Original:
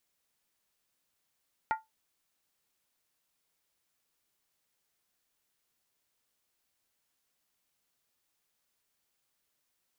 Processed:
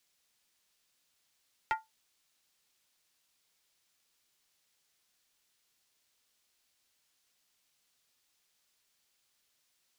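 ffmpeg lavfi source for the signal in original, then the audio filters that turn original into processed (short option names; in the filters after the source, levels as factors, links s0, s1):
-f lavfi -i "aevalsrc='0.0708*pow(10,-3*t/0.18)*sin(2*PI*882*t)+0.0355*pow(10,-3*t/0.143)*sin(2*PI*1405.9*t)+0.0178*pow(10,-3*t/0.123)*sin(2*PI*1884*t)+0.00891*pow(10,-3*t/0.119)*sin(2*PI*2025.1*t)+0.00447*pow(10,-3*t/0.111)*sin(2*PI*2339.9*t)':d=0.63:s=44100"
-filter_complex "[0:a]equalizer=f=4400:t=o:w=2.5:g=7.5,acrossover=split=150|1200|3200[s0][s1][s2][s3];[s1]asoftclip=type=hard:threshold=0.0266[s4];[s0][s4][s2][s3]amix=inputs=4:normalize=0"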